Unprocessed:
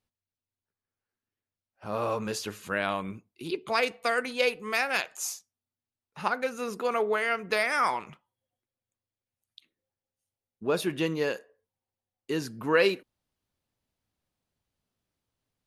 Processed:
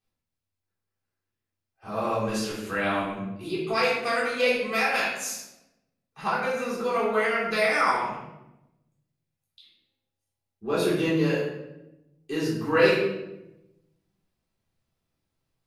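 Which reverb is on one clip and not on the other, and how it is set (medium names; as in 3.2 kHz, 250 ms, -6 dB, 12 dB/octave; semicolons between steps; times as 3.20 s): simulated room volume 350 m³, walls mixed, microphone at 3.7 m; trim -7 dB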